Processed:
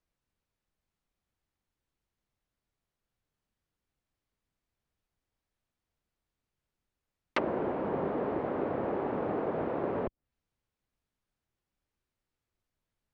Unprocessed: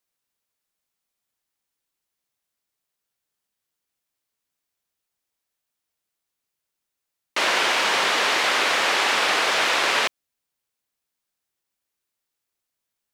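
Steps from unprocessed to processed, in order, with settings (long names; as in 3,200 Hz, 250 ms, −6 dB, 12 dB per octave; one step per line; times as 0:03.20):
RIAA equalisation playback
treble cut that deepens with the level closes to 470 Hz, closed at −22 dBFS
level −1.5 dB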